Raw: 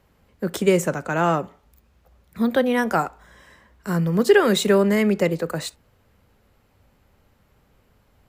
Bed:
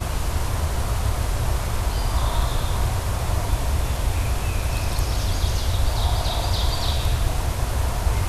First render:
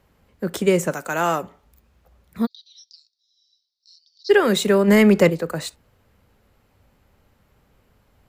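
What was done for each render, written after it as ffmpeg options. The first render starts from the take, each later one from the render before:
ffmpeg -i in.wav -filter_complex "[0:a]asplit=3[link_01][link_02][link_03];[link_01]afade=type=out:start_time=0.9:duration=0.02[link_04];[link_02]aemphasis=mode=production:type=bsi,afade=type=in:start_time=0.9:duration=0.02,afade=type=out:start_time=1.42:duration=0.02[link_05];[link_03]afade=type=in:start_time=1.42:duration=0.02[link_06];[link_04][link_05][link_06]amix=inputs=3:normalize=0,asplit=3[link_07][link_08][link_09];[link_07]afade=type=out:start_time=2.45:duration=0.02[link_10];[link_08]asuperpass=centerf=4700:order=8:qfactor=2.4,afade=type=in:start_time=2.45:duration=0.02,afade=type=out:start_time=4.29:duration=0.02[link_11];[link_09]afade=type=in:start_time=4.29:duration=0.02[link_12];[link_10][link_11][link_12]amix=inputs=3:normalize=0,asplit=3[link_13][link_14][link_15];[link_13]afade=type=out:start_time=4.87:duration=0.02[link_16];[link_14]acontrast=64,afade=type=in:start_time=4.87:duration=0.02,afade=type=out:start_time=5.29:duration=0.02[link_17];[link_15]afade=type=in:start_time=5.29:duration=0.02[link_18];[link_16][link_17][link_18]amix=inputs=3:normalize=0" out.wav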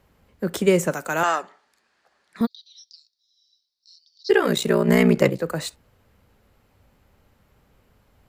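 ffmpeg -i in.wav -filter_complex "[0:a]asettb=1/sr,asplit=3[link_01][link_02][link_03];[link_01]atrim=end=1.234[link_04];[link_02]atrim=start=1.23:end=2.41,asetpts=PTS-STARTPTS,afade=type=in:duration=0.004:curve=qsin,afade=type=out:start_time=1.176:duration=0.004:curve=qsin,highpass=460,equalizer=frequency=520:width_type=q:width=4:gain=-6,equalizer=frequency=1700:width_type=q:width=4:gain=9,equalizer=frequency=4500:width_type=q:width=4:gain=7,lowpass=frequency=9300:width=0.5412,lowpass=frequency=9300:width=1.3066[link_05];[link_03]atrim=start=2.406[link_06];[link_04][link_05]acrossfade=duration=0.004:curve1=hsin:curve2=qsin[link_07];[link_07][link_06]acrossfade=duration=0.004:curve1=qsin:curve2=hsin,asettb=1/sr,asplit=3[link_08][link_09][link_10];[link_08]atrim=end=4.304[link_11];[link_09]atrim=start=4.3:end=5.41,asetpts=PTS-STARTPTS,afade=type=in:duration=0.004:curve=qsin,afade=type=out:start_time=1.106:duration=0.004:curve=qsin,aeval=exprs='val(0)*sin(2*PI*30*n/s)':channel_layout=same[link_12];[link_10]atrim=start=5.406[link_13];[link_11][link_12]acrossfade=duration=0.004:curve1=hsin:curve2=qsin[link_14];[link_14][link_13]acrossfade=duration=0.004:curve1=qsin:curve2=hsin" out.wav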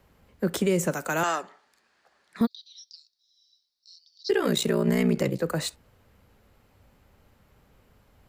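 ffmpeg -i in.wav -filter_complex "[0:a]acrossover=split=400|3000[link_01][link_02][link_03];[link_02]acompressor=threshold=-28dB:ratio=2[link_04];[link_01][link_04][link_03]amix=inputs=3:normalize=0,alimiter=limit=-14dB:level=0:latency=1:release=98" out.wav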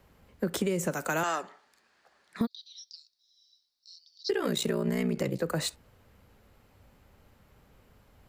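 ffmpeg -i in.wav -af "acompressor=threshold=-25dB:ratio=6" out.wav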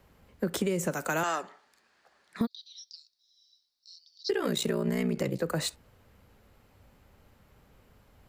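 ffmpeg -i in.wav -af anull out.wav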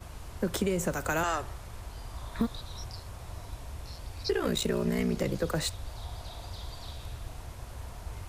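ffmpeg -i in.wav -i bed.wav -filter_complex "[1:a]volume=-19dB[link_01];[0:a][link_01]amix=inputs=2:normalize=0" out.wav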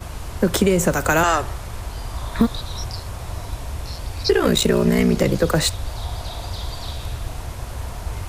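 ffmpeg -i in.wav -af "volume=12dB" out.wav

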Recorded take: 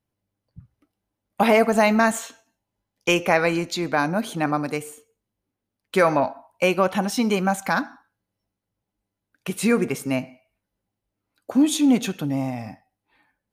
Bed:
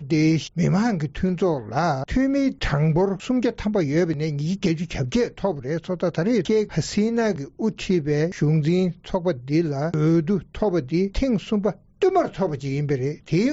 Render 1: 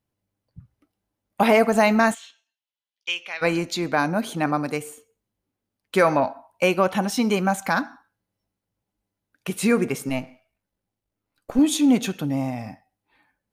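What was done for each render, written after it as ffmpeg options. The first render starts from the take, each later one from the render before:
ffmpeg -i in.wav -filter_complex "[0:a]asplit=3[link_01][link_02][link_03];[link_01]afade=type=out:start_time=2.13:duration=0.02[link_04];[link_02]bandpass=frequency=3300:width_type=q:width=2.5,afade=type=in:start_time=2.13:duration=0.02,afade=type=out:start_time=3.41:duration=0.02[link_05];[link_03]afade=type=in:start_time=3.41:duration=0.02[link_06];[link_04][link_05][link_06]amix=inputs=3:normalize=0,asettb=1/sr,asplit=3[link_07][link_08][link_09];[link_07]atrim=end=10.094[link_10];[link_08]atrim=start=10.09:end=11.59,asetpts=PTS-STARTPTS,afade=type=in:duration=0.004:curve=qsin,afade=type=out:start_time=1.496:duration=0.004:curve=qsin,aeval=exprs='if(lt(val(0),0),0.447*val(0),val(0))':channel_layout=same[link_11];[link_09]atrim=start=11.586[link_12];[link_10][link_11]acrossfade=duration=0.004:curve1=hsin:curve2=qsin[link_13];[link_13][link_12]acrossfade=duration=0.004:curve1=qsin:curve2=hsin" out.wav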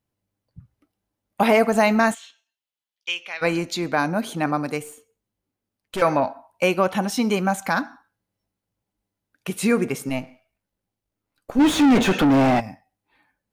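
ffmpeg -i in.wav -filter_complex "[0:a]asettb=1/sr,asplit=3[link_01][link_02][link_03];[link_01]atrim=end=4.834[link_04];[link_02]atrim=start=4.83:end=6.02,asetpts=PTS-STARTPTS,afade=type=in:duration=0.004:curve=qsin,afade=type=out:start_time=1.186:duration=0.004:curve=qsin,aeval=exprs='(tanh(14.1*val(0)+0.35)-tanh(0.35))/14.1':channel_layout=same[link_05];[link_03]atrim=start=6.016[link_06];[link_04][link_05]acrossfade=duration=0.004:curve1=hsin:curve2=qsin[link_07];[link_07][link_06]acrossfade=duration=0.004:curve1=qsin:curve2=hsin,asplit=3[link_08][link_09][link_10];[link_08]afade=type=out:start_time=11.59:duration=0.02[link_11];[link_09]asplit=2[link_12][link_13];[link_13]highpass=frequency=720:poles=1,volume=35dB,asoftclip=type=tanh:threshold=-8.5dB[link_14];[link_12][link_14]amix=inputs=2:normalize=0,lowpass=frequency=1300:poles=1,volume=-6dB,afade=type=in:start_time=11.59:duration=0.02,afade=type=out:start_time=12.59:duration=0.02[link_15];[link_10]afade=type=in:start_time=12.59:duration=0.02[link_16];[link_11][link_15][link_16]amix=inputs=3:normalize=0" out.wav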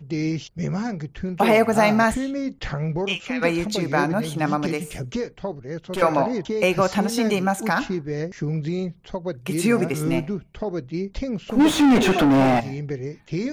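ffmpeg -i in.wav -i bed.wav -filter_complex "[1:a]volume=-6dB[link_01];[0:a][link_01]amix=inputs=2:normalize=0" out.wav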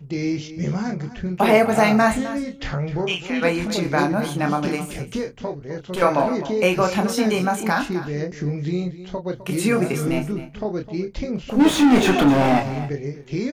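ffmpeg -i in.wav -filter_complex "[0:a]asplit=2[link_01][link_02];[link_02]adelay=28,volume=-5.5dB[link_03];[link_01][link_03]amix=inputs=2:normalize=0,aecho=1:1:258:0.2" out.wav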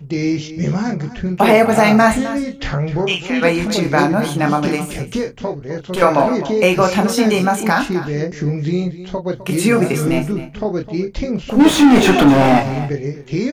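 ffmpeg -i in.wav -af "volume=5.5dB,alimiter=limit=-1dB:level=0:latency=1" out.wav

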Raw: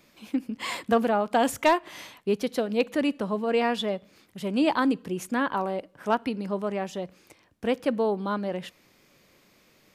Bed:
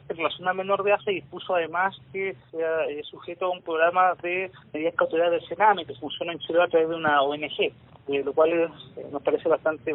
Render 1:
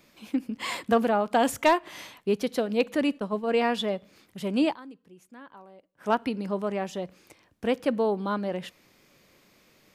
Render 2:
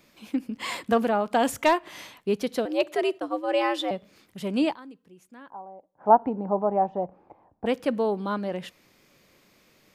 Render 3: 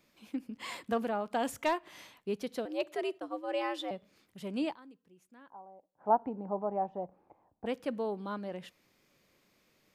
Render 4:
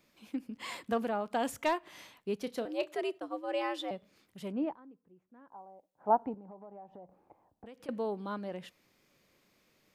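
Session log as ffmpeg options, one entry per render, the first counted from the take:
ffmpeg -i in.wav -filter_complex "[0:a]asplit=3[link_01][link_02][link_03];[link_01]afade=type=out:start_time=3.18:duration=0.02[link_04];[link_02]agate=range=-33dB:threshold=-27dB:ratio=3:release=100:detection=peak,afade=type=in:start_time=3.18:duration=0.02,afade=type=out:start_time=3.62:duration=0.02[link_05];[link_03]afade=type=in:start_time=3.62:duration=0.02[link_06];[link_04][link_05][link_06]amix=inputs=3:normalize=0,asplit=3[link_07][link_08][link_09];[link_07]atrim=end=4.77,asetpts=PTS-STARTPTS,afade=type=out:start_time=4.64:duration=0.13:silence=0.0891251[link_10];[link_08]atrim=start=4.77:end=5.96,asetpts=PTS-STARTPTS,volume=-21dB[link_11];[link_09]atrim=start=5.96,asetpts=PTS-STARTPTS,afade=type=in:duration=0.13:silence=0.0891251[link_12];[link_10][link_11][link_12]concat=n=3:v=0:a=1" out.wav
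ffmpeg -i in.wav -filter_complex "[0:a]asettb=1/sr,asplit=3[link_01][link_02][link_03];[link_01]atrim=end=2.654[link_04];[link_02]atrim=start=2.65:end=3.91,asetpts=PTS-STARTPTS,afade=type=in:duration=0.004:curve=qsin,afade=type=out:start_time=1.256:duration=0.004:curve=qsin,afreqshift=100[link_05];[link_03]atrim=start=3.906[link_06];[link_04][link_05]acrossfade=duration=0.004:curve1=hsin:curve2=qsin[link_07];[link_07][link_06]acrossfade=duration=0.004:curve1=qsin:curve2=hsin,asettb=1/sr,asplit=3[link_08][link_09][link_10];[link_08]atrim=end=5.504[link_11];[link_09]atrim=start=5.5:end=7.66,asetpts=PTS-STARTPTS,afade=type=in:duration=0.004:curve=qsin,afade=type=out:start_time=2.156:duration=0.004:curve=qsin,lowpass=frequency=820:width_type=q:width=5[link_12];[link_10]atrim=start=7.656[link_13];[link_11][link_12]acrossfade=duration=0.004:curve1=hsin:curve2=qsin[link_14];[link_14][link_13]acrossfade=duration=0.004:curve1=qsin:curve2=hsin" out.wav
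ffmpeg -i in.wav -af "volume=-9.5dB" out.wav
ffmpeg -i in.wav -filter_complex "[0:a]asettb=1/sr,asplit=3[link_01][link_02][link_03];[link_01]atrim=end=2.394[link_04];[link_02]atrim=start=2.39:end=2.96,asetpts=PTS-STARTPTS,afade=type=in:duration=0.004:curve=qsin,afade=type=out:start_time=0.566:duration=0.004:curve=qsin,asplit=2[link_05][link_06];[link_06]adelay=30,volume=-14dB[link_07];[link_05][link_07]amix=inputs=2:normalize=0,atrim=end_sample=25137[link_08];[link_03]atrim=start=2.956[link_09];[link_04][link_08]acrossfade=duration=0.004:curve1=hsin:curve2=qsin[link_10];[link_10][link_09]acrossfade=duration=0.004:curve1=qsin:curve2=hsin,asettb=1/sr,asplit=3[link_11][link_12][link_13];[link_11]atrim=end=4.524[link_14];[link_12]atrim=start=4.52:end=5.52,asetpts=PTS-STARTPTS,afade=type=in:duration=0.004:curve=qsin,afade=type=out:start_time=0.996:duration=0.004:curve=qsin,lowpass=1200[link_15];[link_13]atrim=start=5.516[link_16];[link_14][link_15]acrossfade=duration=0.004:curve1=hsin:curve2=qsin[link_17];[link_17][link_16]acrossfade=duration=0.004:curve1=qsin:curve2=hsin,asettb=1/sr,asplit=3[link_18][link_19][link_20];[link_18]atrim=end=6.344[link_21];[link_19]atrim=start=6.34:end=7.89,asetpts=PTS-STARTPTS,afade=type=in:duration=0.004:curve=qsin,afade=type=out:start_time=1.546:duration=0.004:curve=qsin,acompressor=threshold=-47dB:ratio=6:attack=3.2:release=140:knee=1:detection=peak[link_22];[link_20]atrim=start=7.886[link_23];[link_21][link_22]acrossfade=duration=0.004:curve1=hsin:curve2=qsin[link_24];[link_24][link_23]acrossfade=duration=0.004:curve1=qsin:curve2=hsin" out.wav

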